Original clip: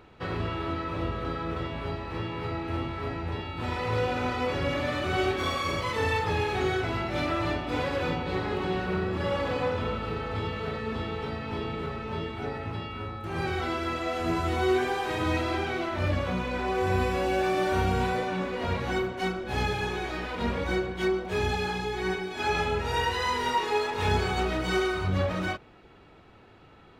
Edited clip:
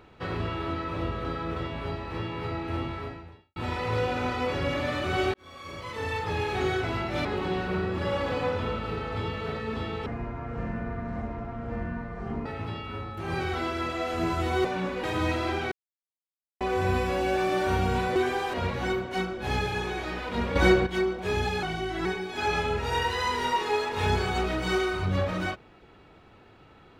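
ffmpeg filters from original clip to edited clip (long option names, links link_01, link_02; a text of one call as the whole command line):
ffmpeg -i in.wav -filter_complex "[0:a]asplit=16[link_01][link_02][link_03][link_04][link_05][link_06][link_07][link_08][link_09][link_10][link_11][link_12][link_13][link_14][link_15][link_16];[link_01]atrim=end=3.56,asetpts=PTS-STARTPTS,afade=type=out:start_time=2.94:duration=0.62:curve=qua[link_17];[link_02]atrim=start=3.56:end=5.34,asetpts=PTS-STARTPTS,afade=type=in:duration=0.004:curve=hsin,afade=type=out:start_time=1.776:duration=0.004:curve=hsin[link_18];[link_03]atrim=start=5.34:end=7.252,asetpts=PTS-STARTPTS,afade=type=in:duration=1.28[link_19];[link_04]atrim=start=8.438:end=11.254[link_20];[link_05]atrim=start=11.25:end=12.52,asetpts=PTS-STARTPTS,asetrate=23373,aresample=44100[link_21];[link_06]atrim=start=12.516:end=14.712[link_22];[link_07]atrim=start=18.208:end=18.602[link_23];[link_08]atrim=start=15.088:end=15.77,asetpts=PTS-STARTPTS,afade=type=out:start_time=0.678:duration=0.004:curve=hsin[link_24];[link_09]atrim=start=15.77:end=16.66,asetpts=PTS-STARTPTS,volume=0[link_25];[link_10]atrim=start=16.66:end=18.212,asetpts=PTS-STARTPTS,afade=type=in:duration=0.004:curve=hsin[link_26];[link_11]atrim=start=14.708:end=15.092[link_27];[link_12]atrim=start=18.598:end=20.622[link_28];[link_13]atrim=start=20.618:end=20.932,asetpts=PTS-STARTPTS,volume=8.5dB[link_29];[link_14]atrim=start=20.928:end=21.694[link_30];[link_15]atrim=start=21.69:end=22.07,asetpts=PTS-STARTPTS,asetrate=39249,aresample=44100,atrim=end_sample=18829,asetpts=PTS-STARTPTS[link_31];[link_16]atrim=start=22.066[link_32];[link_17][link_18][link_19]concat=n=3:v=0:a=1[link_33];[link_33][link_20]acrossfade=duration=0.004:curve1=hsin:curve2=hsin[link_34];[link_34][link_21]acrossfade=duration=0.004:curve1=hsin:curve2=hsin[link_35];[link_35][link_22]acrossfade=duration=0.004:curve1=hsin:curve2=hsin[link_36];[link_36][link_23]acrossfade=duration=0.004:curve1=hsin:curve2=hsin[link_37];[link_24][link_25][link_26]concat=n=3:v=0:a=1[link_38];[link_37][link_38]acrossfade=duration=0.004:curve1=hsin:curve2=hsin[link_39];[link_39][link_27]acrossfade=duration=0.004:curve1=hsin:curve2=hsin[link_40];[link_40][link_28]acrossfade=duration=0.004:curve1=hsin:curve2=hsin[link_41];[link_41][link_29]acrossfade=duration=0.004:curve1=hsin:curve2=hsin[link_42];[link_42][link_30]acrossfade=duration=0.004:curve1=hsin:curve2=hsin[link_43];[link_43][link_31]acrossfade=duration=0.004:curve1=hsin:curve2=hsin[link_44];[link_44][link_32]acrossfade=duration=0.004:curve1=hsin:curve2=hsin" out.wav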